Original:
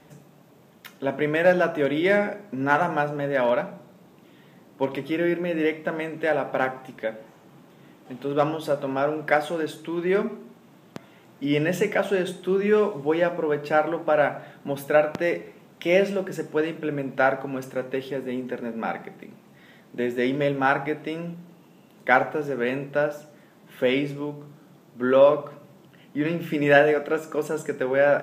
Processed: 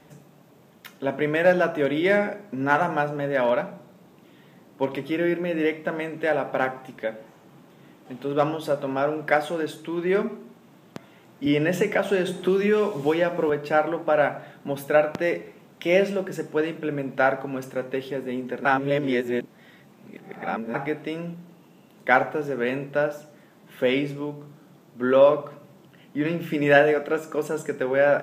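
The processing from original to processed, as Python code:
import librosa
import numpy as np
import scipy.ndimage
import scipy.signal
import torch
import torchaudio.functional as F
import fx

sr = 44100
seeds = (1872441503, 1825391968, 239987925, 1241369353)

y = fx.band_squash(x, sr, depth_pct=100, at=(11.46, 13.5))
y = fx.edit(y, sr, fx.reverse_span(start_s=18.65, length_s=2.09), tone=tone)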